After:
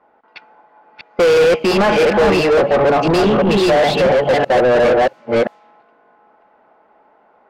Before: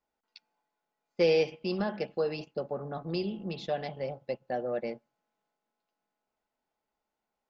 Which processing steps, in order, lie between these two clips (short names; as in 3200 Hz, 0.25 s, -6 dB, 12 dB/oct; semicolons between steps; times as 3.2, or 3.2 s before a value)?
reverse delay 0.342 s, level -1 dB; overdrive pedal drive 35 dB, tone 1500 Hz, clips at -12.5 dBFS; low-pass opened by the level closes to 1400 Hz, open at -22 dBFS; gain +8 dB